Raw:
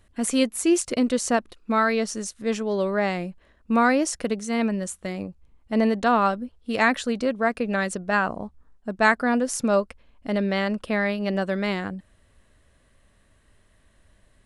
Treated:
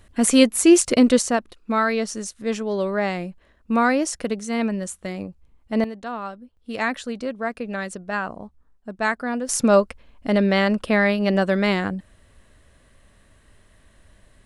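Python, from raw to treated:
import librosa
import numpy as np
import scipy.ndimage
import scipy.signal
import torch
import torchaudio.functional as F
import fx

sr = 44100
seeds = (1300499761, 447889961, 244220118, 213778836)

y = fx.gain(x, sr, db=fx.steps((0.0, 7.0), (1.22, 0.5), (5.84, -11.0), (6.57, -4.0), (9.49, 5.5)))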